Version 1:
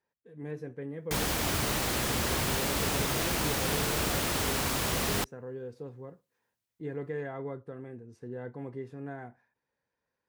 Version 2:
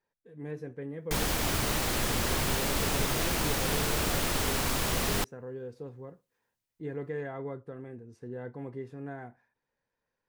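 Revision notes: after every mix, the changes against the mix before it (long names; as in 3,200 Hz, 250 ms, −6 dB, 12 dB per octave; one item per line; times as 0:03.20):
master: remove high-pass filter 49 Hz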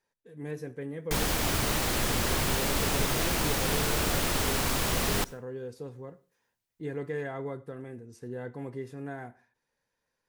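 speech: remove low-pass filter 2,200 Hz 6 dB per octave
reverb: on, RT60 0.40 s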